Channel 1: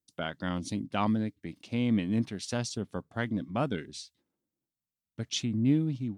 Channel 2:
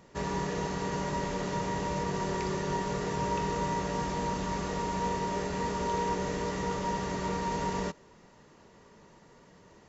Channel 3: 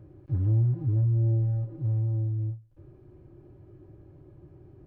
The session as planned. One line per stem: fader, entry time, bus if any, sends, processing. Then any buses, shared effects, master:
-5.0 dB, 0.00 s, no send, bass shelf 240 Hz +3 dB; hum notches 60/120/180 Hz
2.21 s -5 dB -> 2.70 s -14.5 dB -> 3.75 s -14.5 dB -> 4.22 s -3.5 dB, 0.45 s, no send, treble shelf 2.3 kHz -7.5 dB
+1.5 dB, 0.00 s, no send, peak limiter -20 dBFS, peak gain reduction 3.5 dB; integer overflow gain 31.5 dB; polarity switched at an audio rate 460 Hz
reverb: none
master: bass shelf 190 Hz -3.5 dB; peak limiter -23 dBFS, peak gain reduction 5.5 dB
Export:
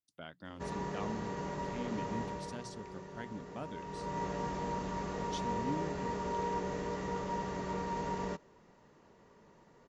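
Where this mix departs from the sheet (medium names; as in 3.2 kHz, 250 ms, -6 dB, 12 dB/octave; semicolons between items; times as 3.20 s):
stem 1 -5.0 dB -> -13.5 dB; stem 3: muted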